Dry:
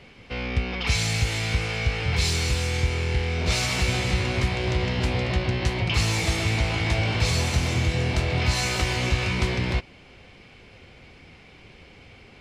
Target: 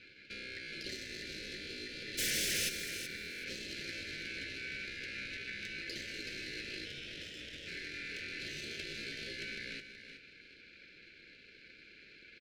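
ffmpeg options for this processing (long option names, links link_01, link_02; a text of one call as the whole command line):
ffmpeg -i in.wav -filter_complex "[0:a]highpass=270,acompressor=threshold=-46dB:ratio=2,asettb=1/sr,asplit=3[link_01][link_02][link_03];[link_01]atrim=end=6.854[link_04];[link_02]atrim=start=6.85:end=7.67,asetpts=PTS-STARTPTS,afade=type=in:duration=0.004:curve=qsin,afade=type=out:start_time=0.816:duration=0.004:curve=qsin,aeval=exprs='val(0)*sin(2*PI*1100*n/s)':channel_layout=same[link_05];[link_03]atrim=start=7.666[link_06];[link_04][link_05]acrossfade=duration=0.004:curve1=hsin:curve2=qsin[link_07];[link_07][link_06]acrossfade=duration=0.004:curve1=qsin:curve2=hsin,adynamicsmooth=sensitivity=6:basefreq=1400,aeval=exprs='val(0)*sin(2*PI*1900*n/s)':channel_layout=same,asplit=3[link_08][link_09][link_10];[link_08]afade=type=out:start_time=2.17:duration=0.02[link_11];[link_09]aeval=exprs='0.0251*sin(PI/2*7.08*val(0)/0.0251)':channel_layout=same,afade=type=in:start_time=2.17:duration=0.02,afade=type=out:start_time=2.68:duration=0.02[link_12];[link_10]afade=type=in:start_time=2.68:duration=0.02[link_13];[link_11][link_12][link_13]amix=inputs=3:normalize=0,asuperstop=centerf=950:order=8:qfactor=0.86,aecho=1:1:375|750|1125:0.335|0.0703|0.0148,volume=2.5dB" out.wav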